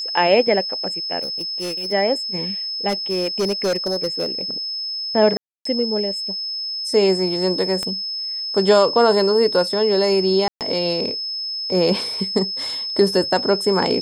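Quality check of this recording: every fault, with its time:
tone 5200 Hz -24 dBFS
1.22–1.93 clipped -23 dBFS
2.88–4.41 clipped -16.5 dBFS
5.37–5.65 gap 0.284 s
7.83 pop -12 dBFS
10.48–10.61 gap 0.128 s

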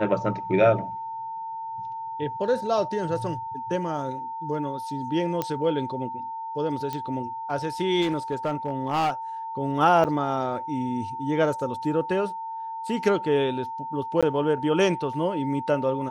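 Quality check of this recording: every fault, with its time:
tone 900 Hz -31 dBFS
5.42 pop -12 dBFS
6.93 pop -17 dBFS
8.01–9.1 clipped -20 dBFS
10.04–10.05 gap 7.6 ms
14.21–14.23 gap 16 ms

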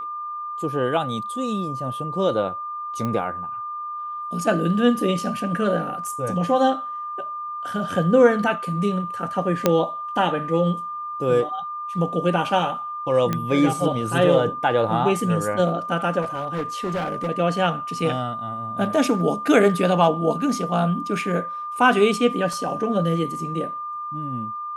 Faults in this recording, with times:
tone 1200 Hz -28 dBFS
3.05 pop -15 dBFS
9.66 pop -3 dBFS
13.33 pop -10 dBFS
16.21–17.29 clipped -21.5 dBFS
22.53 gap 2.2 ms

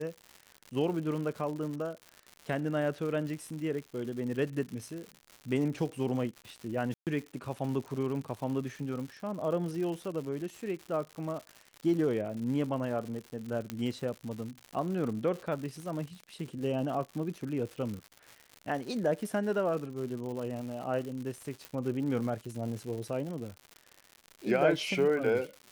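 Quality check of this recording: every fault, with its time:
crackle 160/s -38 dBFS
6.94–7.07 gap 0.128 s
13.7 pop -20 dBFS
21.65 pop -23 dBFS

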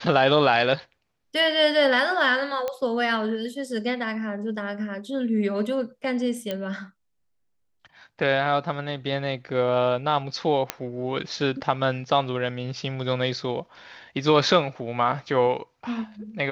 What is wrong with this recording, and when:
2.68 pop -15 dBFS
6.51 pop -15 dBFS
10.7 pop -7 dBFS

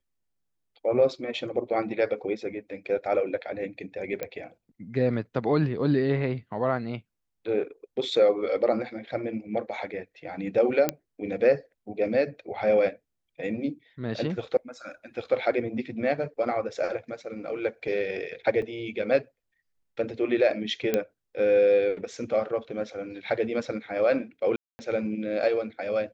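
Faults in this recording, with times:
4.23 pop -17 dBFS
10.89 pop -9 dBFS
18.62 gap 3.9 ms
20.94 pop -11 dBFS
24.56–24.79 gap 0.23 s

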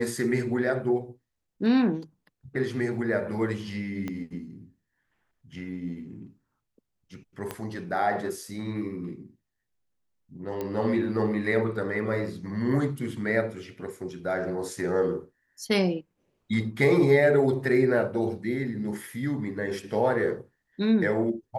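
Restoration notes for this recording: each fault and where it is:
4.08 pop -20 dBFS
7.51 pop -17 dBFS
10.61 pop -19 dBFS

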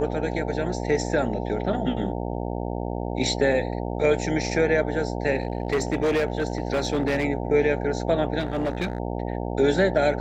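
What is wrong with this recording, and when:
buzz 60 Hz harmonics 15 -29 dBFS
5.37–7.25 clipped -18.5 dBFS
8.39–9 clipped -21.5 dBFS

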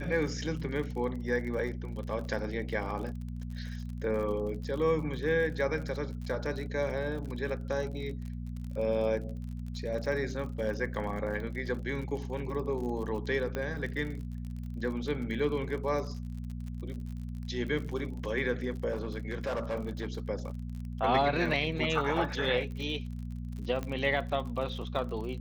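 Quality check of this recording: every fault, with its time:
crackle 48/s -39 dBFS
hum 60 Hz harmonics 4 -38 dBFS
13.55 pop -21 dBFS
18.91–20.08 clipped -29 dBFS
23.83 pop -22 dBFS

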